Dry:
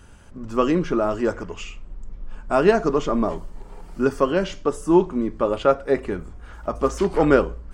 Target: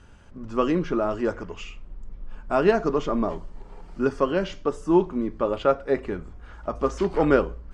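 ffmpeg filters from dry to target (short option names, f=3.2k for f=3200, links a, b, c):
-af "lowpass=5.8k,volume=-3dB"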